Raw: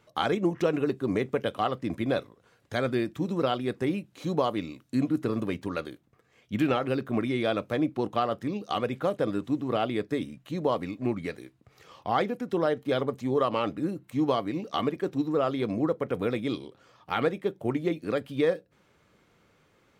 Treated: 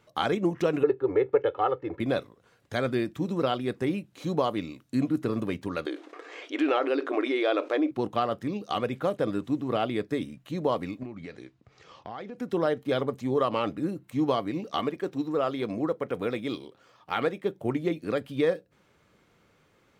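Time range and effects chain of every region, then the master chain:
0:00.83–0:02.00: low-pass filter 1,700 Hz + low shelf with overshoot 310 Hz −6.5 dB, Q 1.5 + comb filter 2.3 ms, depth 84%
0:05.86–0:07.91: linear-phase brick-wall high-pass 270 Hz + high-frequency loss of the air 97 metres + envelope flattener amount 50%
0:11.03–0:12.38: low-pass filter 6,900 Hz 24 dB per octave + downward compressor 4 to 1, threshold −37 dBFS
0:14.80–0:17.44: running median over 3 samples + low-shelf EQ 210 Hz −6.5 dB
whole clip: no processing

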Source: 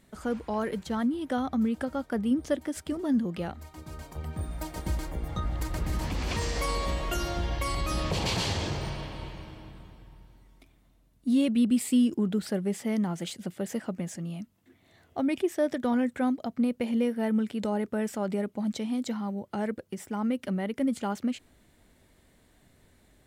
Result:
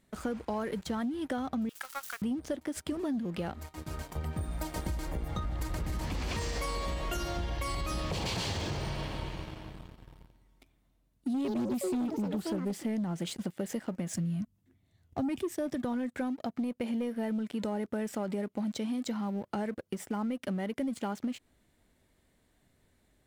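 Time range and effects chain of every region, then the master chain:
0:01.69–0:02.22: spike at every zero crossing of −35 dBFS + Chebyshev high-pass filter 1,100 Hz, order 3 + highs frequency-modulated by the lows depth 0.14 ms
0:11.34–0:13.43: low-shelf EQ 470 Hz +4 dB + delay with pitch and tempo change per echo 106 ms, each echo +7 semitones, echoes 2, each echo −6 dB + highs frequency-modulated by the lows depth 0.18 ms
0:14.13–0:15.85: bass and treble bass +14 dB, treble +5 dB + multiband upward and downward expander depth 40%
whole clip: leveller curve on the samples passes 2; downward compressor, threshold −27 dBFS; level −4 dB

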